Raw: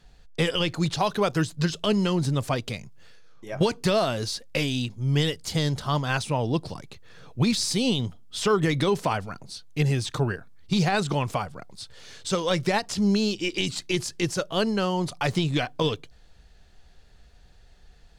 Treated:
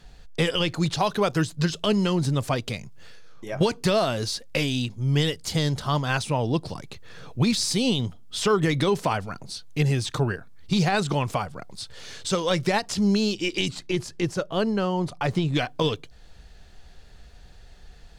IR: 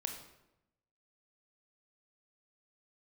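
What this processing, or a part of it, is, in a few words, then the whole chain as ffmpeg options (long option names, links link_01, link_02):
parallel compression: -filter_complex "[0:a]asettb=1/sr,asplit=3[link_01][link_02][link_03];[link_01]atrim=end=13.684[link_04];[link_02]atrim=start=13.68:end=15.55,asetpts=PTS-STARTPTS,afade=type=in:duration=0.004:curve=qsin,afade=type=out:start_time=1.866:duration=0.004:curve=qsin,highshelf=frequency=2400:gain=-9[link_05];[link_03]atrim=start=15.546[link_06];[link_04][link_05]acrossfade=duration=0.004:curve1=hsin:curve2=qsin[link_07];[link_07][link_06]acrossfade=duration=0.004:curve1=qsin:curve2=hsin,asplit=2[link_08][link_09];[link_09]acompressor=threshold=-42dB:ratio=6,volume=-0.5dB[link_10];[link_08][link_10]amix=inputs=2:normalize=0"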